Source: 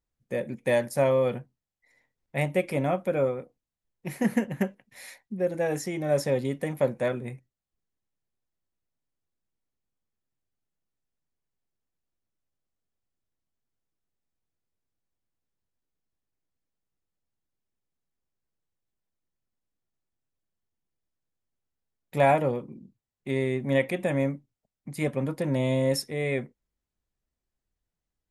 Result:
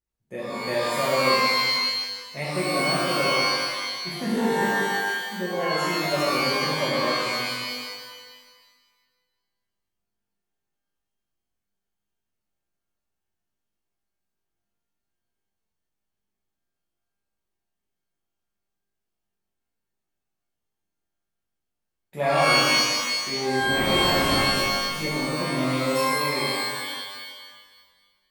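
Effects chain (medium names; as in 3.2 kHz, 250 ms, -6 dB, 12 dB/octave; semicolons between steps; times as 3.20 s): 23.58–24.33 s: wind noise 630 Hz -27 dBFS; pitch-shifted reverb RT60 1.5 s, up +12 st, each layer -2 dB, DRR -7 dB; trim -7.5 dB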